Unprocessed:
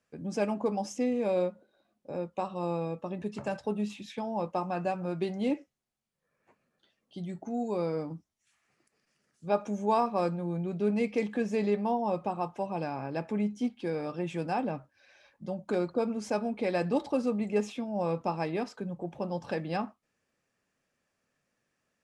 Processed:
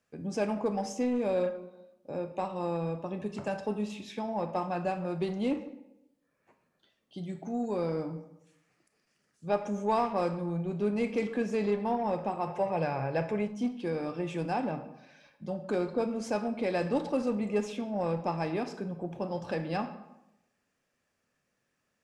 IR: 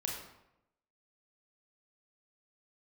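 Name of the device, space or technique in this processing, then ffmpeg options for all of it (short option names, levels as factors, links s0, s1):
saturated reverb return: -filter_complex "[0:a]asplit=2[s0][s1];[1:a]atrim=start_sample=2205[s2];[s1][s2]afir=irnorm=-1:irlink=0,asoftclip=type=tanh:threshold=0.0562,volume=0.631[s3];[s0][s3]amix=inputs=2:normalize=0,asettb=1/sr,asplit=3[s4][s5][s6];[s4]atrim=end=12.474[s7];[s5]atrim=start=12.47:end=13.48,asetpts=PTS-STARTPTS,afade=t=in:d=0.004:c=qsin,afade=t=out:st=1.006:d=0.004:c=qsin,equalizer=f=125:t=o:w=1:g=9,equalizer=f=250:t=o:w=1:g=-8,equalizer=f=500:t=o:w=1:g=7,equalizer=f=2000:t=o:w=1:g=6[s8];[s6]atrim=start=13.476[s9];[s7][s8]acrossfade=d=0.004:c1=hsin:c2=qsin[s10];[s10][s9]acrossfade=d=0.004:c1=qsin:c2=hsin,volume=0.668"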